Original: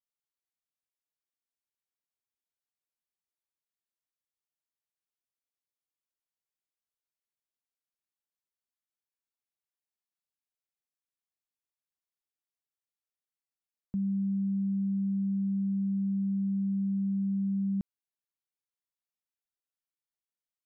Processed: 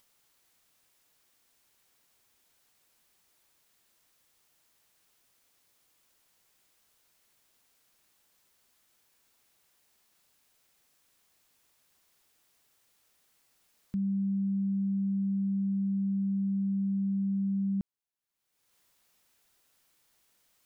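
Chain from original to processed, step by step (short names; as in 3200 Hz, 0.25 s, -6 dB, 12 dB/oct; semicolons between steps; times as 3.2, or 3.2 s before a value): upward compressor, threshold -50 dBFS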